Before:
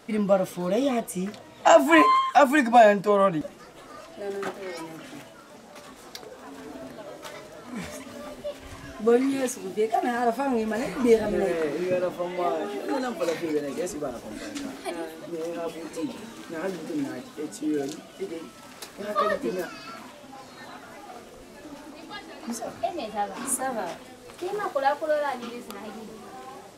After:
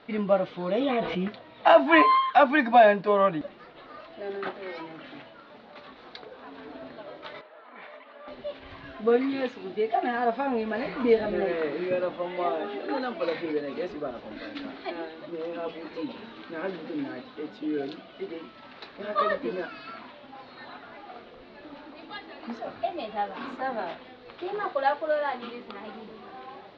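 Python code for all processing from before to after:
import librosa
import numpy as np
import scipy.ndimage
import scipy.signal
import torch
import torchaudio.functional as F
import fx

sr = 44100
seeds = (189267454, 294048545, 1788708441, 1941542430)

y = fx.chain(x, sr, fx.lowpass(hz=4500.0, slope=24),
    fx.comb(ms=6.2, depth=0.32),
    fx.env_flatten(amount_pct=70), at=(0.8, 1.28))
y = fx.chain(y, sr, fx.bandpass_edges(low_hz=650.0, high_hz=3300.0),
    fx.high_shelf(hz=2200.0, db=-8.0), at=(7.41, 8.28))
y = scipy.signal.sosfilt(scipy.signal.ellip(4, 1.0, 60, 4100.0, 'lowpass', fs=sr, output='sos'), y)
y = fx.low_shelf(y, sr, hz=230.0, db=-5.5)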